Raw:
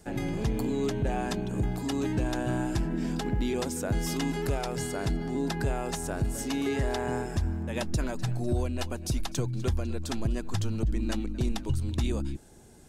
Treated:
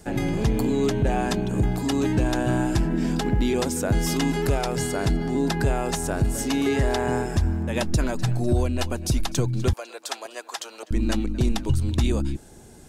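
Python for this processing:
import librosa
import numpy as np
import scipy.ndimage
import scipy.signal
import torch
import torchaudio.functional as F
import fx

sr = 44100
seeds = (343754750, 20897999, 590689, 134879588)

y = fx.highpass(x, sr, hz=540.0, slope=24, at=(9.73, 10.91))
y = y * 10.0 ** (6.5 / 20.0)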